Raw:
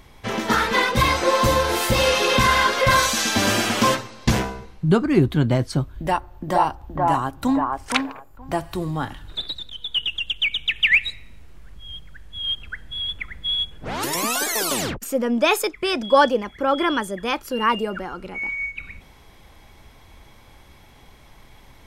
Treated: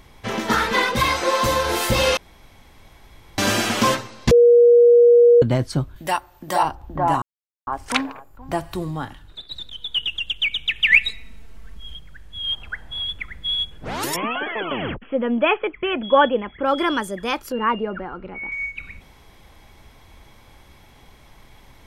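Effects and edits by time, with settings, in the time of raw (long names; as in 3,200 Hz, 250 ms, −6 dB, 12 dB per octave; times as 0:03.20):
0:00.97–0:01.66: low-shelf EQ 370 Hz −5.5 dB
0:02.17–0:03.38: fill with room tone
0:04.31–0:05.42: beep over 477 Hz −8 dBFS
0:05.96–0:06.63: spectral tilt +3 dB per octave
0:07.22–0:07.67: silence
0:08.73–0:09.51: fade out, to −12 dB
0:10.88–0:11.95: comb filter 4.5 ms, depth 83%
0:12.52–0:13.04: parametric band 830 Hz +10.5 dB 1.1 octaves
0:14.16–0:16.66: linear-phase brick-wall low-pass 3,400 Hz
0:17.52–0:18.52: Bessel low-pass filter 2,000 Hz, order 4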